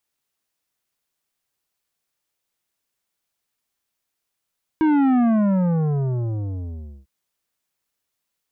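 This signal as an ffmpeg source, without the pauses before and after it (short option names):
-f lavfi -i "aevalsrc='0.168*clip((2.25-t)/1.87,0,1)*tanh(3.55*sin(2*PI*320*2.25/log(65/320)*(exp(log(65/320)*t/2.25)-1)))/tanh(3.55)':d=2.25:s=44100"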